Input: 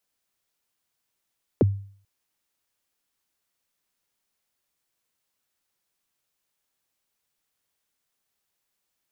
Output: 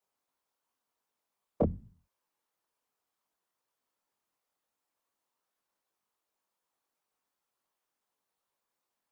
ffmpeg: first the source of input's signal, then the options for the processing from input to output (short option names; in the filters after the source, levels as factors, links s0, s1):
-f lavfi -i "aevalsrc='0.251*pow(10,-3*t/0.5)*sin(2*PI*(560*0.024/log(99/560)*(exp(log(99/560)*min(t,0.024)/0.024)-1)+99*max(t-0.024,0)))':d=0.44:s=44100"
-af "equalizer=f=125:t=o:w=1:g=-5,equalizer=f=250:t=o:w=1:g=6,equalizer=f=500:t=o:w=1:g=6,equalizer=f=1000:t=o:w=1:g=11,afftfilt=real='hypot(re,im)*cos(2*PI*random(0))':imag='hypot(re,im)*sin(2*PI*random(1))':win_size=512:overlap=0.75,flanger=delay=18:depth=7.4:speed=2.7"